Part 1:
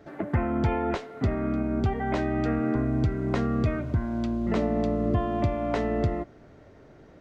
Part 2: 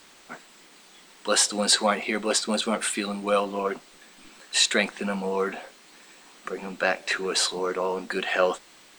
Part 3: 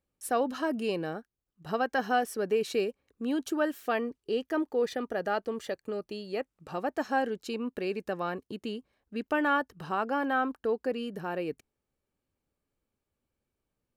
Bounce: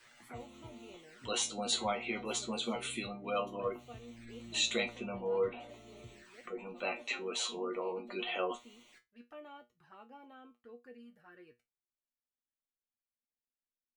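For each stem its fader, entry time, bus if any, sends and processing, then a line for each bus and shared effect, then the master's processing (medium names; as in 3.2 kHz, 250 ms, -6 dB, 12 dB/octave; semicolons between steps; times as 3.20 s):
-15.5 dB, 0.00 s, no send, flange 0.45 Hz, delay 0.2 ms, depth 3.6 ms, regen +63%
-2.0 dB, 0.00 s, no send, spectral gate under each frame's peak -25 dB strong
-14.5 dB, 0.00 s, no send, none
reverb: none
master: peaking EQ 1.8 kHz +9.5 dB 1 oct; touch-sensitive flanger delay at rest 3.7 ms, full sweep at -39 dBFS; feedback comb 120 Hz, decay 0.19 s, harmonics all, mix 90%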